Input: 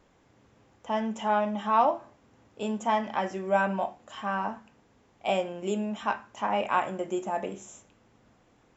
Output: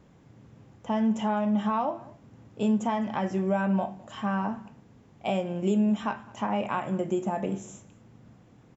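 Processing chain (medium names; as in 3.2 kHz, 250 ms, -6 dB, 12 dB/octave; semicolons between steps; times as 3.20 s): compression 2.5:1, threshold -29 dBFS, peak gain reduction 8.5 dB; peaking EQ 140 Hz +14 dB 2 oct; on a send: delay 208 ms -23 dB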